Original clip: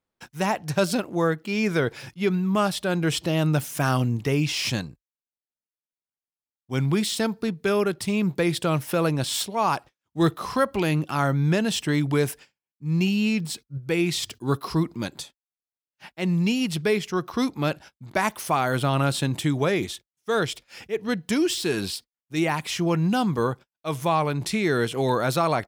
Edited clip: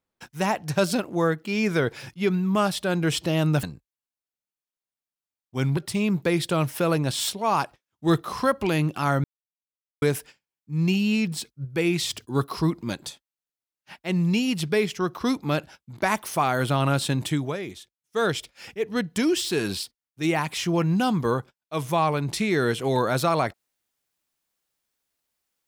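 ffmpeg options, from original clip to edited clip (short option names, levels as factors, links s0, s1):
-filter_complex "[0:a]asplit=7[s0][s1][s2][s3][s4][s5][s6];[s0]atrim=end=3.632[s7];[s1]atrim=start=4.788:end=6.932[s8];[s2]atrim=start=7.898:end=11.37,asetpts=PTS-STARTPTS,afade=t=out:st=3.468:d=0.004:c=hsin[s9];[s3]atrim=start=11.37:end=12.15,asetpts=PTS-STARTPTS,volume=0[s10];[s4]atrim=start=12.15:end=19.71,asetpts=PTS-STARTPTS,afade=t=in:d=0.004:c=hsin,afade=t=out:st=7.26:d=0.3:silence=0.334965[s11];[s5]atrim=start=19.71:end=20.02,asetpts=PTS-STARTPTS,volume=0.335[s12];[s6]atrim=start=20.02,asetpts=PTS-STARTPTS,afade=t=in:d=0.3:silence=0.334965[s13];[s7][s8]acrossfade=d=0.004:c1=hsin:c2=hsin[s14];[s9][s10][s11][s12][s13]concat=n=5:v=0:a=1[s15];[s14][s15]acrossfade=d=0.004:c1=hsin:c2=hsin"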